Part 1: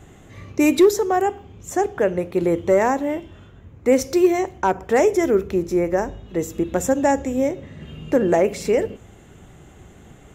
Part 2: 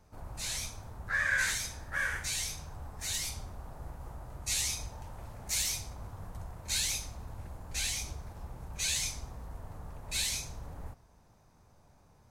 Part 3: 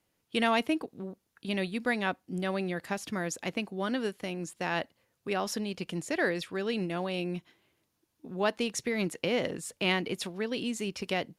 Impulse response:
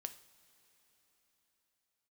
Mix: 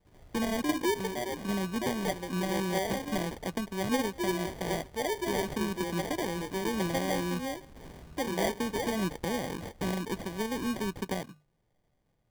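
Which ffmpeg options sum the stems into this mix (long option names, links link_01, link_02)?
-filter_complex "[0:a]adelay=50,volume=-15.5dB[link_01];[1:a]flanger=delay=1.2:depth=5.2:regen=-52:speed=0.21:shape=sinusoidal,volume=-7.5dB[link_02];[2:a]acrossover=split=240[link_03][link_04];[link_04]acompressor=threshold=-34dB:ratio=4[link_05];[link_03][link_05]amix=inputs=2:normalize=0,volume=2.5dB[link_06];[link_01][link_02][link_06]amix=inputs=3:normalize=0,equalizer=frequency=3800:width_type=o:width=0.95:gain=-10,bandreject=frequency=50:width_type=h:width=6,bandreject=frequency=100:width_type=h:width=6,bandreject=frequency=150:width_type=h:width=6,acrusher=samples=33:mix=1:aa=0.000001"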